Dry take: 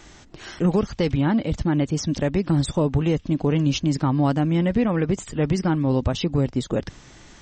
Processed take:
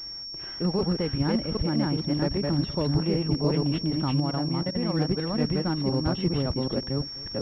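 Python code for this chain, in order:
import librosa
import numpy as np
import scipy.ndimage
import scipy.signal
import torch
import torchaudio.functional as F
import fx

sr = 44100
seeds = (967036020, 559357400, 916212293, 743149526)

y = fx.reverse_delay(x, sr, ms=393, wet_db=-1)
y = fx.level_steps(y, sr, step_db=20, at=(4.2, 4.9))
y = y + 10.0 ** (-20.0 / 20.0) * np.pad(y, (int(252 * sr / 1000.0), 0))[:len(y)]
y = fx.pwm(y, sr, carrier_hz=5500.0)
y = y * librosa.db_to_amplitude(-6.5)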